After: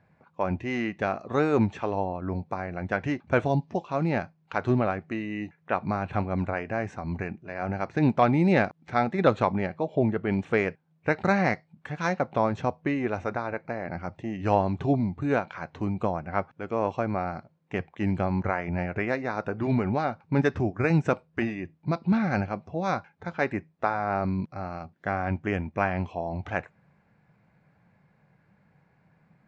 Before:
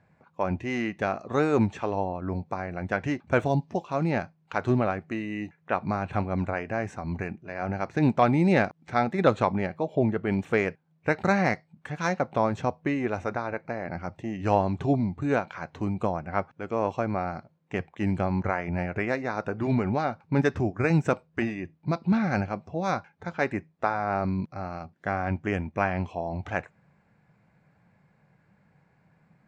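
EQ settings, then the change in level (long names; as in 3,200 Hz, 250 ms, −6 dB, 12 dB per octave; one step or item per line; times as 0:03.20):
low-pass filter 5,700 Hz 12 dB per octave
0.0 dB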